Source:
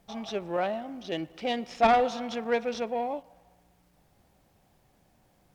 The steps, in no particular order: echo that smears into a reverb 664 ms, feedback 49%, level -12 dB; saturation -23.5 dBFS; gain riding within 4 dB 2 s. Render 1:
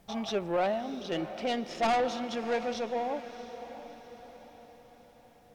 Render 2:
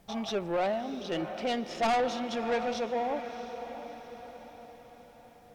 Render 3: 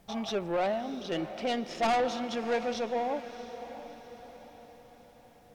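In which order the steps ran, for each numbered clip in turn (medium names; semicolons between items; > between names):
saturation > gain riding > echo that smears into a reverb; gain riding > echo that smears into a reverb > saturation; gain riding > saturation > echo that smears into a reverb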